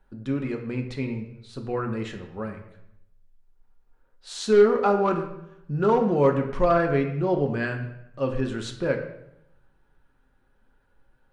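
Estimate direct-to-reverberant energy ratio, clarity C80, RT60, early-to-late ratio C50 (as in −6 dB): 2.5 dB, 10.5 dB, 0.80 s, 8.0 dB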